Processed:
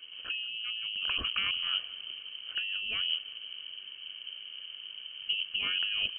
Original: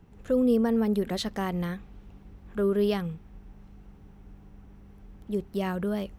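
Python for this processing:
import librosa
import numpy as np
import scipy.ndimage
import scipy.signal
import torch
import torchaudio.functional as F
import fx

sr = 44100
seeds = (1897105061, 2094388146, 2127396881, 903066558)

p1 = fx.octave_divider(x, sr, octaves=2, level_db=4.0)
p2 = fx.over_compress(p1, sr, threshold_db=-30.0, ratio=-1.0)
p3 = fx.notch_comb(p2, sr, f0_hz=1100.0)
p4 = p3 + fx.echo_feedback(p3, sr, ms=178, feedback_pct=58, wet_db=-20.0, dry=0)
y = fx.freq_invert(p4, sr, carrier_hz=3100)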